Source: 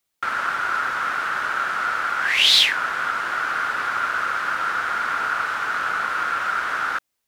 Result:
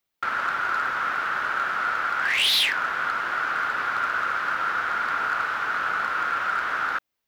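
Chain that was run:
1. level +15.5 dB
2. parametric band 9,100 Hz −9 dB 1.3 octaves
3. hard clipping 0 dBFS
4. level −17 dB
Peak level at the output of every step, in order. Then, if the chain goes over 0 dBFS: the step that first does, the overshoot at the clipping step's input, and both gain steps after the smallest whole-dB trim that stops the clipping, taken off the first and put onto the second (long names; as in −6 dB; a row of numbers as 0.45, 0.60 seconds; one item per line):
+12.0, +10.0, 0.0, −17.0 dBFS
step 1, 10.0 dB
step 1 +5.5 dB, step 4 −7 dB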